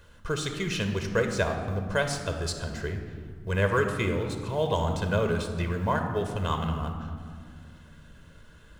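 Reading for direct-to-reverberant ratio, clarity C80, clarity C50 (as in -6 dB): 5.5 dB, 7.5 dB, 6.5 dB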